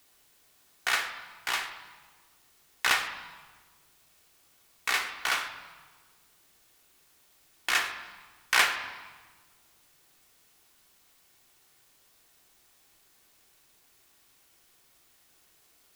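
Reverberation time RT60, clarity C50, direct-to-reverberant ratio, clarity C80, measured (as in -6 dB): 1.4 s, 9.0 dB, 5.0 dB, 10.5 dB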